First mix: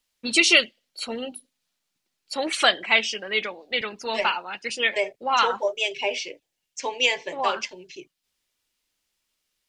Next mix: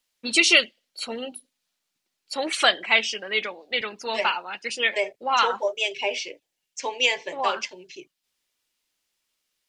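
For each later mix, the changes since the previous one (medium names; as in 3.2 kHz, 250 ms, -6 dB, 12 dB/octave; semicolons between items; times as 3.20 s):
master: add bass shelf 150 Hz -8 dB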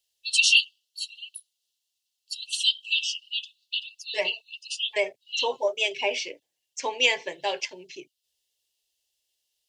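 first voice: add brick-wall FIR high-pass 2.6 kHz; master: add high-pass 44 Hz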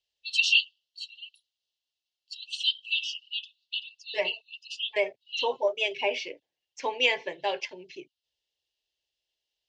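master: add distance through air 170 m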